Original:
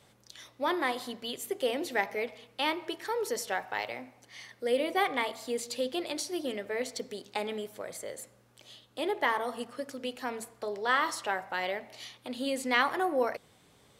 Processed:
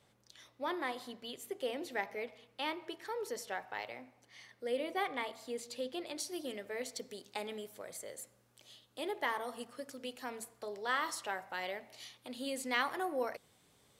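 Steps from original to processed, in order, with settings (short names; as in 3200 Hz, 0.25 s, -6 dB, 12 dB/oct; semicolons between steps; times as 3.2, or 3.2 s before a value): high shelf 5000 Hz -2.5 dB, from 6.2 s +6 dB; gain -7.5 dB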